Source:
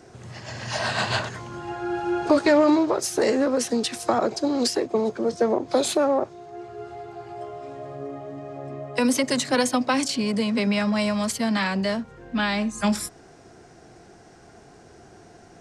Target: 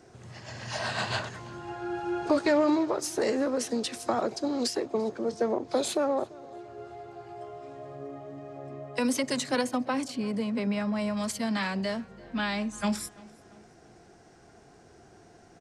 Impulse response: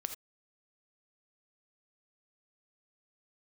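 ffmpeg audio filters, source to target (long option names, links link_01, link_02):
-filter_complex "[0:a]asettb=1/sr,asplit=3[link_01][link_02][link_03];[link_01]atrim=end=9.614[link_04];[link_02]atrim=start=9.61:end=11.17,asetpts=PTS-STARTPTS,afade=type=in:duration=0.004:curve=qsin,afade=type=out:start_time=1.556:duration=0.004:curve=qsin,equalizer=frequency=5400:width_type=o:width=2.7:gain=-8[link_05];[link_03]atrim=start=11.166[link_06];[link_04][link_05]acrossfade=duration=0.004:curve1=hsin:curve2=qsin[link_07];[link_07][link_06]acrossfade=duration=0.004:curve1=qsin:curve2=hsin,asplit=2[link_08][link_09];[link_09]adelay=341,lowpass=frequency=4800:poles=1,volume=-22.5dB,asplit=2[link_10][link_11];[link_11]adelay=341,lowpass=frequency=4800:poles=1,volume=0.49,asplit=2[link_12][link_13];[link_13]adelay=341,lowpass=frequency=4800:poles=1,volume=0.49[link_14];[link_10][link_12][link_14]amix=inputs=3:normalize=0[link_15];[link_08][link_15]amix=inputs=2:normalize=0,volume=-6dB"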